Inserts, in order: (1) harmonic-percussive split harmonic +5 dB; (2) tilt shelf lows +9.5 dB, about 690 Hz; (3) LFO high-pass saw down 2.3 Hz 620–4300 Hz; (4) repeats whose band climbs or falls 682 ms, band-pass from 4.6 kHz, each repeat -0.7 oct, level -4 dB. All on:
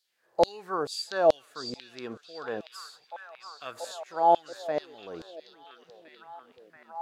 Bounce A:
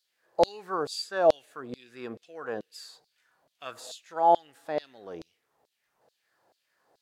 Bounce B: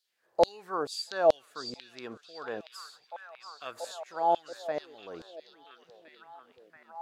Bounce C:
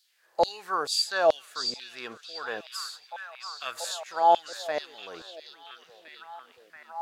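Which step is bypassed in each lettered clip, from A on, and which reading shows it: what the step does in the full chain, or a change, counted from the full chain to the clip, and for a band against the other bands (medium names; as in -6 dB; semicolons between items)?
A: 4, echo-to-direct -8.0 dB to none; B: 1, 125 Hz band -2.0 dB; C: 2, 250 Hz band -12.0 dB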